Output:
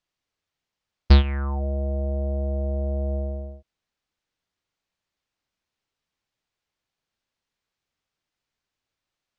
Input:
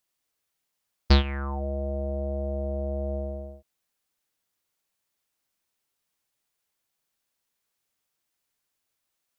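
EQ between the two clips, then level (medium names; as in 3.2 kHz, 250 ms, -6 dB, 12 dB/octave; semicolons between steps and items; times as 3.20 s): distance through air 150 m; bass shelf 160 Hz +7 dB; treble shelf 3.8 kHz +6 dB; 0.0 dB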